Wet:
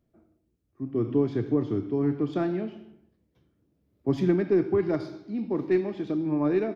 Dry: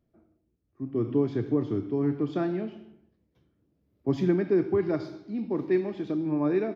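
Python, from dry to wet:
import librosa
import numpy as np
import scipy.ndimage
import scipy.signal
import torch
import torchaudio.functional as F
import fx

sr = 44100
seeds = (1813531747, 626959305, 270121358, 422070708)

y = fx.tracing_dist(x, sr, depth_ms=0.027)
y = y * 10.0 ** (1.0 / 20.0)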